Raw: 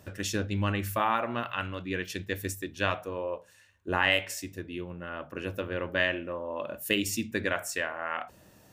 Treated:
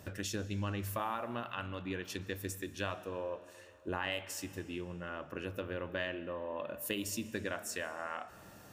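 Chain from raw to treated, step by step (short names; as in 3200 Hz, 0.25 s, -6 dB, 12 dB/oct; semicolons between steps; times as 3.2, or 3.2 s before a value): dynamic EQ 2100 Hz, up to -5 dB, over -42 dBFS, Q 1.8; compressor 2:1, threshold -43 dBFS, peak gain reduction 11.5 dB; reverb RT60 2.9 s, pre-delay 85 ms, DRR 16 dB; gain +1.5 dB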